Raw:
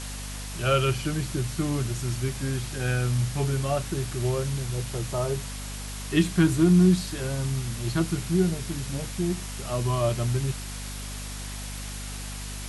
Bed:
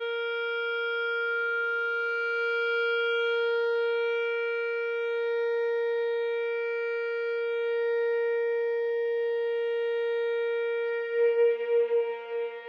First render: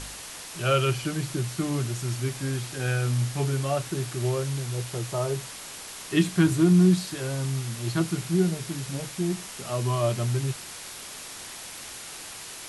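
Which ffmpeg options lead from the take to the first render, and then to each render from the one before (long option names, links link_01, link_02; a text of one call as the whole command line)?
ffmpeg -i in.wav -af "bandreject=frequency=50:width_type=h:width=4,bandreject=frequency=100:width_type=h:width=4,bandreject=frequency=150:width_type=h:width=4,bandreject=frequency=200:width_type=h:width=4,bandreject=frequency=250:width_type=h:width=4" out.wav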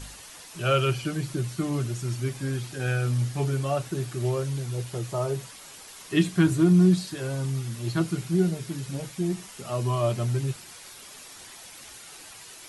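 ffmpeg -i in.wav -af "afftdn=noise_reduction=8:noise_floor=-41" out.wav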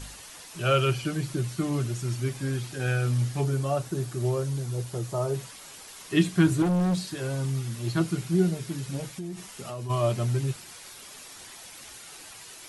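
ffmpeg -i in.wav -filter_complex "[0:a]asettb=1/sr,asplit=3[link_01][link_02][link_03];[link_01]atrim=end=3.414[link_04];[link_02]atrim=start=3.41:end=5.34,asetpts=PTS-STARTPTS,afade=type=in:duration=0.004:curve=qsin,afade=type=out:start_time=1.926:duration=0.004:curve=qsin,equalizer=frequency=2500:width=0.95:gain=-5[link_05];[link_03]atrim=start=5.336[link_06];[link_04][link_05]acrossfade=duration=0.004:curve1=hsin:curve2=qsin[link_07];[link_07][link_06]acrossfade=duration=0.004:curve1=qsin:curve2=hsin,asettb=1/sr,asplit=3[link_08][link_09][link_10];[link_08]atrim=end=6.624[link_11];[link_09]atrim=start=6.62:end=7.89,asetpts=PTS-STARTPTS,afade=type=in:duration=0.004:curve=qsin,afade=type=out:start_time=1.266:duration=0.004:curve=qsin,asoftclip=type=hard:threshold=-22dB[link_12];[link_10]atrim=start=7.886[link_13];[link_11][link_12]acrossfade=duration=0.004:curve1=hsin:curve2=qsin[link_14];[link_14][link_13]acrossfade=duration=0.004:curve1=qsin:curve2=hsin,asplit=3[link_15][link_16][link_17];[link_15]afade=type=out:start_time=9.1:duration=0.02[link_18];[link_16]acompressor=threshold=-32dB:ratio=6:attack=3.2:release=140:knee=1:detection=peak,afade=type=in:start_time=9.1:duration=0.02,afade=type=out:start_time=9.89:duration=0.02[link_19];[link_17]afade=type=in:start_time=9.89:duration=0.02[link_20];[link_18][link_19][link_20]amix=inputs=3:normalize=0" out.wav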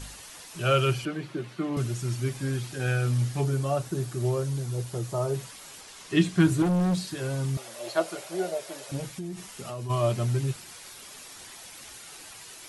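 ffmpeg -i in.wav -filter_complex "[0:a]asettb=1/sr,asplit=3[link_01][link_02][link_03];[link_01]atrim=end=1.054[link_04];[link_02]atrim=start=1.05:end=1.77,asetpts=PTS-STARTPTS,afade=type=in:duration=0.004:curve=qsin,afade=type=out:start_time=0.716:duration=0.004:curve=qsin,acrossover=split=180 3700:gain=0.0891 1 0.141[link_05][link_06][link_07];[link_05][link_06][link_07]amix=inputs=3:normalize=0[link_08];[link_03]atrim=start=1.766[link_09];[link_04][link_08]acrossfade=duration=0.004:curve1=hsin:curve2=qsin[link_10];[link_10][link_09]acrossfade=duration=0.004:curve1=qsin:curve2=hsin,asettb=1/sr,asplit=3[link_11][link_12][link_13];[link_11]atrim=end=5.814[link_14];[link_12]atrim=start=5.81:end=6.4,asetpts=PTS-STARTPTS,afade=type=in:duration=0.004:curve=qsin,afade=type=out:start_time=0.586:duration=0.004:curve=qsin,lowpass=8800[link_15];[link_13]atrim=start=6.396[link_16];[link_14][link_15]acrossfade=duration=0.004:curve1=hsin:curve2=qsin[link_17];[link_17][link_16]acrossfade=duration=0.004:curve1=qsin:curve2=hsin,asettb=1/sr,asplit=3[link_18][link_19][link_20];[link_18]atrim=end=7.574[link_21];[link_19]atrim=start=7.57:end=8.92,asetpts=PTS-STARTPTS,afade=type=in:duration=0.004:curve=qsin,afade=type=out:start_time=1.346:duration=0.004:curve=qsin,highpass=frequency=600:width_type=q:width=6.8[link_22];[link_20]atrim=start=8.916[link_23];[link_21][link_22]acrossfade=duration=0.004:curve1=hsin:curve2=qsin[link_24];[link_24][link_23]acrossfade=duration=0.004:curve1=qsin:curve2=hsin" out.wav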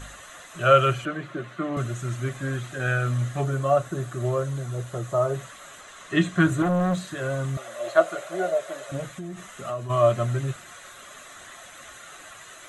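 ffmpeg -i in.wav -af "superequalizer=8b=2.51:10b=2.82:11b=2.24:14b=0.282:16b=0.447" out.wav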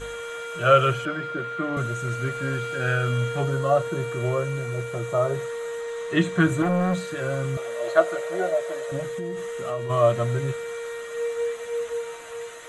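ffmpeg -i in.wav -i bed.wav -filter_complex "[1:a]volume=-4dB[link_01];[0:a][link_01]amix=inputs=2:normalize=0" out.wav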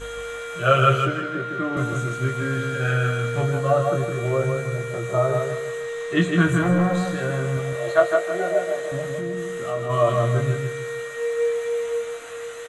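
ffmpeg -i in.wav -filter_complex "[0:a]asplit=2[link_01][link_02];[link_02]adelay=23,volume=-5dB[link_03];[link_01][link_03]amix=inputs=2:normalize=0,asplit=2[link_04][link_05];[link_05]adelay=158,lowpass=frequency=4500:poles=1,volume=-4dB,asplit=2[link_06][link_07];[link_07]adelay=158,lowpass=frequency=4500:poles=1,volume=0.34,asplit=2[link_08][link_09];[link_09]adelay=158,lowpass=frequency=4500:poles=1,volume=0.34,asplit=2[link_10][link_11];[link_11]adelay=158,lowpass=frequency=4500:poles=1,volume=0.34[link_12];[link_06][link_08][link_10][link_12]amix=inputs=4:normalize=0[link_13];[link_04][link_13]amix=inputs=2:normalize=0" out.wav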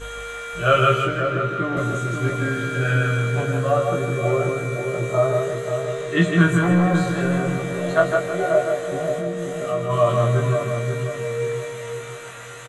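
ffmpeg -i in.wav -filter_complex "[0:a]asplit=2[link_01][link_02];[link_02]adelay=18,volume=-4.5dB[link_03];[link_01][link_03]amix=inputs=2:normalize=0,asplit=2[link_04][link_05];[link_05]adelay=535,lowpass=frequency=870:poles=1,volume=-5dB,asplit=2[link_06][link_07];[link_07]adelay=535,lowpass=frequency=870:poles=1,volume=0.46,asplit=2[link_08][link_09];[link_09]adelay=535,lowpass=frequency=870:poles=1,volume=0.46,asplit=2[link_10][link_11];[link_11]adelay=535,lowpass=frequency=870:poles=1,volume=0.46,asplit=2[link_12][link_13];[link_13]adelay=535,lowpass=frequency=870:poles=1,volume=0.46,asplit=2[link_14][link_15];[link_15]adelay=535,lowpass=frequency=870:poles=1,volume=0.46[link_16];[link_04][link_06][link_08][link_10][link_12][link_14][link_16]amix=inputs=7:normalize=0" out.wav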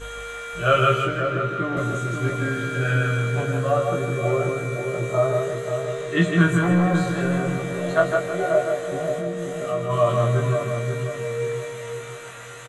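ffmpeg -i in.wav -af "volume=-1.5dB" out.wav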